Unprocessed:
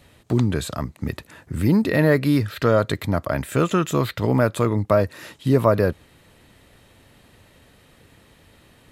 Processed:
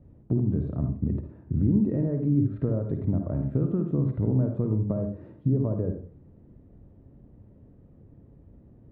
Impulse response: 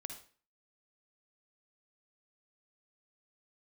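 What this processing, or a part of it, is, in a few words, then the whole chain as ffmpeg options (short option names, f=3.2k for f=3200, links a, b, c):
television next door: -filter_complex "[0:a]acompressor=threshold=-22dB:ratio=6,lowpass=320[a];[1:a]atrim=start_sample=2205[b];[a][b]afir=irnorm=-1:irlink=0,volume=6.5dB"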